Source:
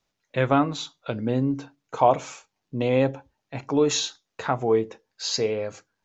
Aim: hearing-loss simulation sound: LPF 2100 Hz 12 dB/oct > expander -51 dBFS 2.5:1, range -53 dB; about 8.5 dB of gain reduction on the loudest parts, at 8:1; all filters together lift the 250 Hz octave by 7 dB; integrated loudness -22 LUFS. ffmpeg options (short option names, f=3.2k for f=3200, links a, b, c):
-af "equalizer=f=250:t=o:g=8,acompressor=threshold=-20dB:ratio=8,lowpass=2.1k,agate=range=-53dB:threshold=-51dB:ratio=2.5,volume=6dB"